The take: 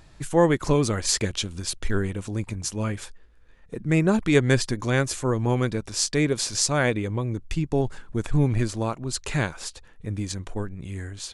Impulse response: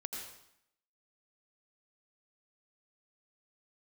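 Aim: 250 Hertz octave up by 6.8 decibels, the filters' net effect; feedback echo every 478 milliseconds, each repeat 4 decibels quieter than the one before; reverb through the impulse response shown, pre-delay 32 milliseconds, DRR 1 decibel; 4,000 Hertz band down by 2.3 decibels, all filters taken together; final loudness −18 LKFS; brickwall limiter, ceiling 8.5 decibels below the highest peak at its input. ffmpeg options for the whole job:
-filter_complex "[0:a]equalizer=frequency=250:width_type=o:gain=9,equalizer=frequency=4000:width_type=o:gain=-3,alimiter=limit=-10.5dB:level=0:latency=1,aecho=1:1:478|956|1434|1912|2390|2868|3346|3824|4302:0.631|0.398|0.25|0.158|0.0994|0.0626|0.0394|0.0249|0.0157,asplit=2[link_01][link_02];[1:a]atrim=start_sample=2205,adelay=32[link_03];[link_02][link_03]afir=irnorm=-1:irlink=0,volume=-0.5dB[link_04];[link_01][link_04]amix=inputs=2:normalize=0,volume=1dB"

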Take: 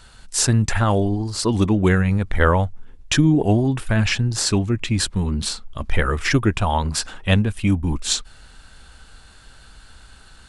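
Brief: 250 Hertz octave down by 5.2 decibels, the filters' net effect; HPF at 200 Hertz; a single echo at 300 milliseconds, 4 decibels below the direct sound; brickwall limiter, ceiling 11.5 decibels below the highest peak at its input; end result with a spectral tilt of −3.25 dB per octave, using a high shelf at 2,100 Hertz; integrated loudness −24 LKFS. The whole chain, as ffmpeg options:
ffmpeg -i in.wav -af "highpass=200,equalizer=frequency=250:width_type=o:gain=-4.5,highshelf=frequency=2100:gain=3.5,alimiter=limit=-12dB:level=0:latency=1,aecho=1:1:300:0.631,volume=-0.5dB" out.wav

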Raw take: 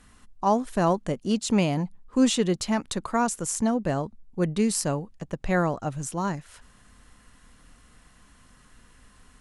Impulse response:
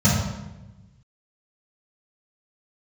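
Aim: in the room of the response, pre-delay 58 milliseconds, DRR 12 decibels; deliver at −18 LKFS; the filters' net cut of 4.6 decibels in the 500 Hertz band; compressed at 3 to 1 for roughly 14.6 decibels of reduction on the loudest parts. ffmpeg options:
-filter_complex "[0:a]equalizer=frequency=500:width_type=o:gain=-6,acompressor=threshold=-38dB:ratio=3,asplit=2[link_01][link_02];[1:a]atrim=start_sample=2205,adelay=58[link_03];[link_02][link_03]afir=irnorm=-1:irlink=0,volume=-30dB[link_04];[link_01][link_04]amix=inputs=2:normalize=0,volume=17dB"

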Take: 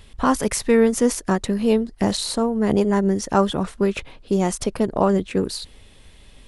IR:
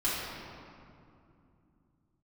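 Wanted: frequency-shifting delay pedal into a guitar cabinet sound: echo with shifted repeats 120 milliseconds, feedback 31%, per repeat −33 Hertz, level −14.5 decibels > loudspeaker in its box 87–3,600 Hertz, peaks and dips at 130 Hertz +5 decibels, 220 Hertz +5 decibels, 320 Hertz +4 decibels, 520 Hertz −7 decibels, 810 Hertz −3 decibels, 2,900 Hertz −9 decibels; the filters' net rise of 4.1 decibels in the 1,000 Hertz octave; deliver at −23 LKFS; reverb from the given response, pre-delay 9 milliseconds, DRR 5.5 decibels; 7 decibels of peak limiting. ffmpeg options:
-filter_complex "[0:a]equalizer=frequency=1000:width_type=o:gain=7,alimiter=limit=-9.5dB:level=0:latency=1,asplit=2[link_01][link_02];[1:a]atrim=start_sample=2205,adelay=9[link_03];[link_02][link_03]afir=irnorm=-1:irlink=0,volume=-15dB[link_04];[link_01][link_04]amix=inputs=2:normalize=0,asplit=4[link_05][link_06][link_07][link_08];[link_06]adelay=120,afreqshift=-33,volume=-14.5dB[link_09];[link_07]adelay=240,afreqshift=-66,volume=-24.7dB[link_10];[link_08]adelay=360,afreqshift=-99,volume=-34.8dB[link_11];[link_05][link_09][link_10][link_11]amix=inputs=4:normalize=0,highpass=87,equalizer=frequency=130:width_type=q:width=4:gain=5,equalizer=frequency=220:width_type=q:width=4:gain=5,equalizer=frequency=320:width_type=q:width=4:gain=4,equalizer=frequency=520:width_type=q:width=4:gain=-7,equalizer=frequency=810:width_type=q:width=4:gain=-3,equalizer=frequency=2900:width_type=q:width=4:gain=-9,lowpass=frequency=3600:width=0.5412,lowpass=frequency=3600:width=1.3066,volume=-3.5dB"

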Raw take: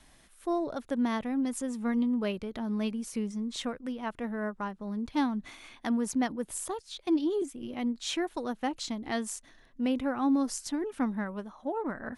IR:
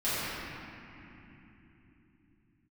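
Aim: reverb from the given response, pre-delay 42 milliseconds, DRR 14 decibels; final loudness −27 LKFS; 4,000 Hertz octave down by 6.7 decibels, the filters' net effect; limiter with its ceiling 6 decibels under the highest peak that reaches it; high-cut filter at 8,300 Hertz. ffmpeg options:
-filter_complex "[0:a]lowpass=8300,equalizer=frequency=4000:width_type=o:gain=-8.5,alimiter=limit=-24dB:level=0:latency=1,asplit=2[link_01][link_02];[1:a]atrim=start_sample=2205,adelay=42[link_03];[link_02][link_03]afir=irnorm=-1:irlink=0,volume=-25.5dB[link_04];[link_01][link_04]amix=inputs=2:normalize=0,volume=6.5dB"

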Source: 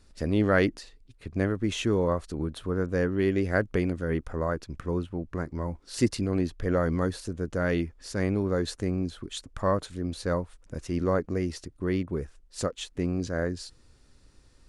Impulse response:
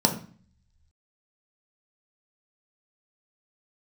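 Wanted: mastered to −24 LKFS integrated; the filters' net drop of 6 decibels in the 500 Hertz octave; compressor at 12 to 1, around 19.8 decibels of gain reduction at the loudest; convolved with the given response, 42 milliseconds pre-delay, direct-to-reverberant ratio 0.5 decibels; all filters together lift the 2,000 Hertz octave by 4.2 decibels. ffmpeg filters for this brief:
-filter_complex "[0:a]equalizer=frequency=500:width_type=o:gain=-8,equalizer=frequency=2000:width_type=o:gain=6,acompressor=threshold=-39dB:ratio=12,asplit=2[link_01][link_02];[1:a]atrim=start_sample=2205,adelay=42[link_03];[link_02][link_03]afir=irnorm=-1:irlink=0,volume=-14dB[link_04];[link_01][link_04]amix=inputs=2:normalize=0,volume=13dB"

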